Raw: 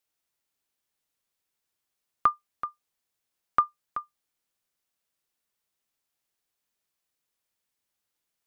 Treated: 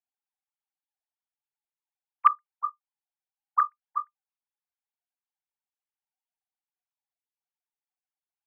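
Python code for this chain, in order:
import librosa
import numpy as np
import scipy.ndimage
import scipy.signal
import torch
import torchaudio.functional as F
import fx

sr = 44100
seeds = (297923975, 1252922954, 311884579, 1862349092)

y = fx.sine_speech(x, sr)
y = fx.peak_eq(y, sr, hz=760.0, db=8.0, octaves=1.7)
y = fx.quant_float(y, sr, bits=6)
y = y * librosa.db_to_amplitude(-2.5)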